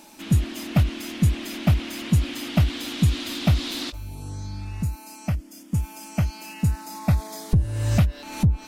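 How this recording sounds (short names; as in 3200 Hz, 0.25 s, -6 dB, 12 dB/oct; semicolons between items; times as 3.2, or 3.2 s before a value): noise floor -45 dBFS; spectral tilt -6.5 dB/oct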